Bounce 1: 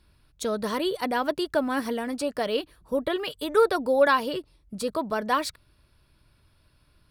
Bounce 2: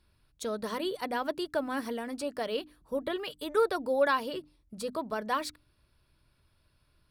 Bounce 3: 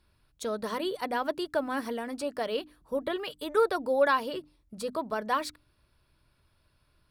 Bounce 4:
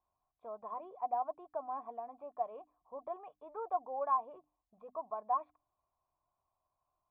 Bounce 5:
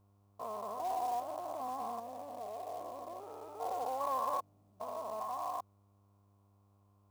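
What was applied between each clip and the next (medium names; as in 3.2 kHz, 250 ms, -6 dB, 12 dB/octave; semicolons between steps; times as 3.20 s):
hum notches 50/100/150/200/250/300 Hz; trim -6 dB
peaking EQ 930 Hz +2.5 dB 2.4 oct
cascade formant filter a; trim +2.5 dB
spectrogram pixelated in time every 400 ms; short-mantissa float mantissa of 2-bit; mains buzz 100 Hz, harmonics 14, -77 dBFS -8 dB/octave; trim +8.5 dB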